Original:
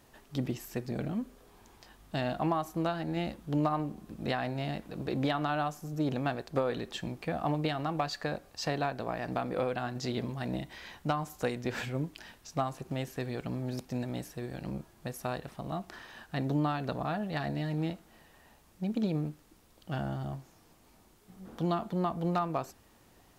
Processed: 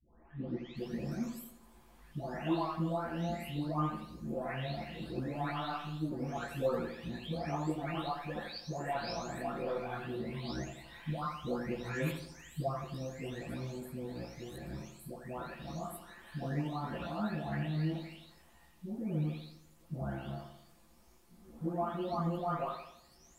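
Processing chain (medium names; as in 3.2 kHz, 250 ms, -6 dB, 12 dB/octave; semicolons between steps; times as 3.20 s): delay that grows with frequency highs late, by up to 767 ms; chorus voices 4, 0.94 Hz, delay 16 ms, depth 3.1 ms; filtered feedback delay 84 ms, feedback 49%, low-pass 2.2 kHz, level -8 dB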